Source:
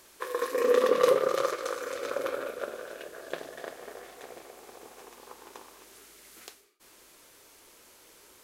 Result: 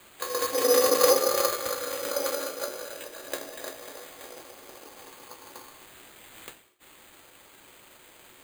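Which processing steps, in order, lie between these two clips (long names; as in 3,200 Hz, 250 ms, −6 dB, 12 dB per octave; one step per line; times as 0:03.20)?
high-pass filter 210 Hz 24 dB per octave
pitch-shifted copies added +7 semitones −15 dB
on a send at −1 dB: convolution reverb, pre-delay 4 ms
on the sum: decimation without filtering 8×
high-shelf EQ 4,800 Hz +11 dB
level −2 dB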